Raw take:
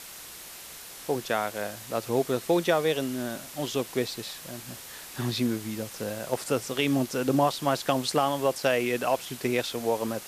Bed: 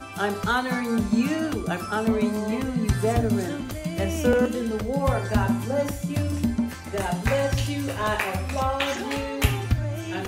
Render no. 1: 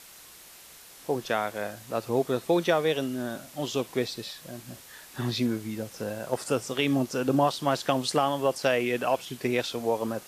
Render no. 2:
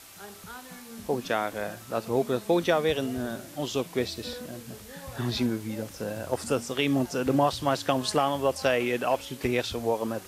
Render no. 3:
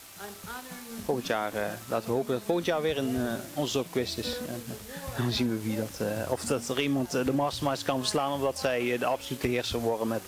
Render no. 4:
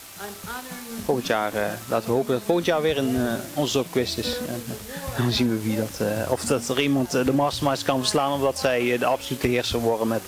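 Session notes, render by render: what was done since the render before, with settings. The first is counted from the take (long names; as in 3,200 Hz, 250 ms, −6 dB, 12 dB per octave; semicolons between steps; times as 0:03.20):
noise reduction from a noise print 6 dB
mix in bed −20 dB
leveller curve on the samples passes 1; downward compressor, threshold −24 dBFS, peak gain reduction 8.5 dB
level +6 dB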